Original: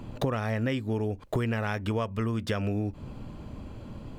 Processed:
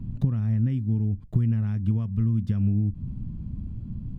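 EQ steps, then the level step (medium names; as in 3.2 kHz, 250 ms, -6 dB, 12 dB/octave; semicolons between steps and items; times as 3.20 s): FFT filter 190 Hz 0 dB, 510 Hz -28 dB, 1 kHz -26 dB; +8.5 dB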